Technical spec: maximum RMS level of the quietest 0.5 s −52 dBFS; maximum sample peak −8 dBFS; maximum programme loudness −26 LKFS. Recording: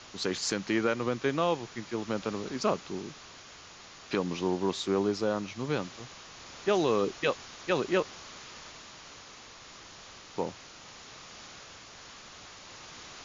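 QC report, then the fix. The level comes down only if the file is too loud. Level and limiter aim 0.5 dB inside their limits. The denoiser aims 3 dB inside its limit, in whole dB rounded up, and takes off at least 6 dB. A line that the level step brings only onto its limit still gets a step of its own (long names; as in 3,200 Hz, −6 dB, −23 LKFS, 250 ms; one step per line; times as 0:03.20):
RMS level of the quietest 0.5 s −50 dBFS: out of spec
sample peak −13.5 dBFS: in spec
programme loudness −31.0 LKFS: in spec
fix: broadband denoise 6 dB, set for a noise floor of −50 dBFS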